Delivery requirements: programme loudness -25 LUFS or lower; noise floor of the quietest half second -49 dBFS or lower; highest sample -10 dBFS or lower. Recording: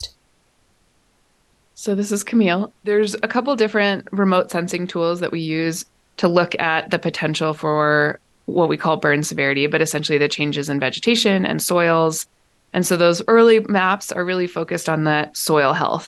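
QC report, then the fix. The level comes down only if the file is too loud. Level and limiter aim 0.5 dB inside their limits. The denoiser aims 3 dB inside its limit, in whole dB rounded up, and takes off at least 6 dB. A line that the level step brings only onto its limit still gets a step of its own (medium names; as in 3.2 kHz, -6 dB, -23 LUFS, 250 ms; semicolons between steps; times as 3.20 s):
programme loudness -18.5 LUFS: fail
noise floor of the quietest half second -61 dBFS: pass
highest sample -4.0 dBFS: fail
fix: trim -7 dB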